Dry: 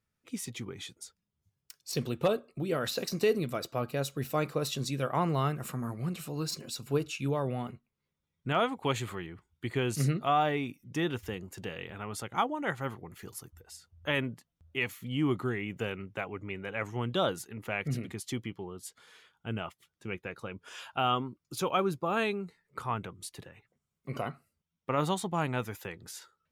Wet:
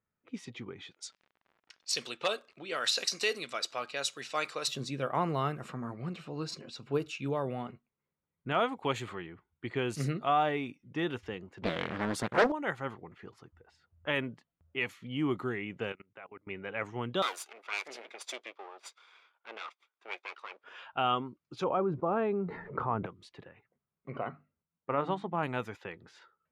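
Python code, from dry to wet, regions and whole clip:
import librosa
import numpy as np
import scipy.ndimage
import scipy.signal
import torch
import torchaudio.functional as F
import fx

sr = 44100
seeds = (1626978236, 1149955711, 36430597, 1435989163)

y = fx.weighting(x, sr, curve='ITU-R 468', at=(0.9, 4.67), fade=0.02)
y = fx.dmg_crackle(y, sr, seeds[0], per_s=60.0, level_db=-44.0, at=(0.9, 4.67), fade=0.02)
y = fx.chain(y, sr, fx.peak_eq(hz=190.0, db=5.0, octaves=1.0),
    fx.leveller(passes=2),
    fx.doppler_dist(depth_ms=0.87), at=(11.62, 12.52))
y = fx.chain(y, sr, fx.highpass(hz=48.0, slope=12),
    fx.low_shelf(hz=390.0, db=-9.0),
    fx.level_steps(step_db=23), at=(15.92, 16.47))
y = fx.chain(y, sr, fx.lower_of_two(delay_ms=0.83),
    fx.highpass(hz=430.0, slope=24),
    fx.high_shelf(hz=3300.0, db=11.5), at=(17.22, 20.64))
y = fx.chain(y, sr, fx.lowpass(hz=1000.0, slope=12),
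    fx.env_flatten(amount_pct=70), at=(21.64, 23.06))
y = fx.chain(y, sr, fx.lowpass(hz=2200.0, slope=12),
    fx.hum_notches(base_hz=50, count=6), at=(24.1, 25.43))
y = fx.low_shelf(y, sr, hz=140.0, db=-10.5)
y = fx.env_lowpass(y, sr, base_hz=1800.0, full_db=-28.5)
y = fx.high_shelf(y, sr, hz=6300.0, db=-11.0)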